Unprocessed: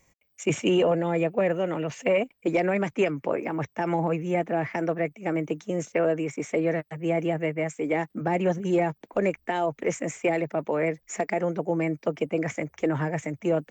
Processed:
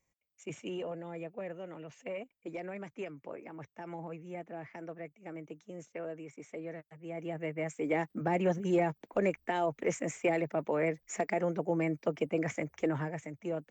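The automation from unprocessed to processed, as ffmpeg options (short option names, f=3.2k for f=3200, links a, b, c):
-af "volume=-5dB,afade=t=in:st=7.09:d=0.81:silence=0.251189,afade=t=out:st=12.8:d=0.4:silence=0.473151"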